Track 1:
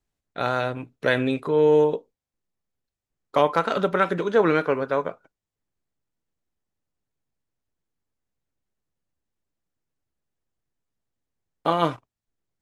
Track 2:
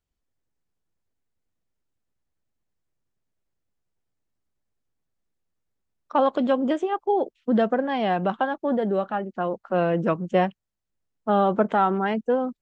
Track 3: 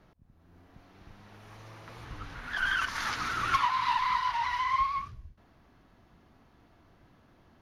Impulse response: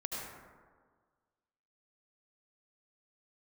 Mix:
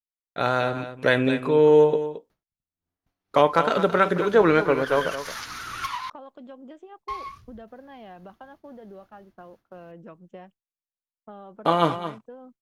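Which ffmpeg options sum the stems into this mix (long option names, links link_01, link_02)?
-filter_complex "[0:a]volume=1.5dB,asplit=2[link_01][link_02];[link_02]volume=-11.5dB[link_03];[1:a]acompressor=threshold=-31dB:ratio=3,volume=-12.5dB[link_04];[2:a]crystalizer=i=2.5:c=0,adelay=2300,volume=-5.5dB,asplit=3[link_05][link_06][link_07];[link_05]atrim=end=6.1,asetpts=PTS-STARTPTS,afade=type=out:start_time=6.096:duration=0.004:curve=hsin[link_08];[link_06]atrim=start=6.1:end=7.08,asetpts=PTS-STARTPTS,volume=0[link_09];[link_07]atrim=start=7.08,asetpts=PTS-STARTPTS,afade=type=in:duration=0.004:curve=hsin[link_10];[link_08][link_09][link_10]concat=n=3:v=0:a=1[link_11];[link_03]aecho=0:1:220:1[link_12];[link_01][link_04][link_11][link_12]amix=inputs=4:normalize=0,agate=range=-33dB:threshold=-46dB:ratio=3:detection=peak"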